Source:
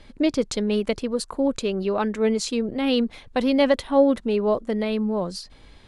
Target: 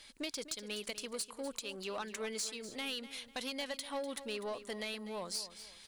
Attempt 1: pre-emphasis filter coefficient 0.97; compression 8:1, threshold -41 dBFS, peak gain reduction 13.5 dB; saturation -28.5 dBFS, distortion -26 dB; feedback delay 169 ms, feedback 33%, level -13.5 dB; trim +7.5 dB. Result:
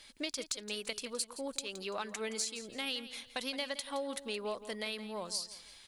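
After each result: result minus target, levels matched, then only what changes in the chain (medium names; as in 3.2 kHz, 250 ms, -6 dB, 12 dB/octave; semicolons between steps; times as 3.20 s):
saturation: distortion -14 dB; echo 79 ms early
change: saturation -39.5 dBFS, distortion -13 dB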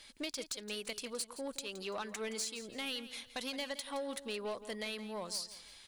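echo 79 ms early
change: feedback delay 248 ms, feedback 33%, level -13.5 dB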